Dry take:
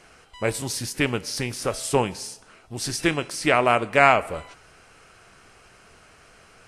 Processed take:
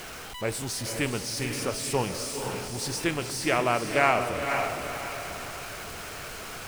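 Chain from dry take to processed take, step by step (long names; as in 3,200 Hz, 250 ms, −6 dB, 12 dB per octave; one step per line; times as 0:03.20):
converter with a step at zero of −28.5 dBFS
feedback delay with all-pass diffusion 502 ms, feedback 44%, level −5 dB
level −7 dB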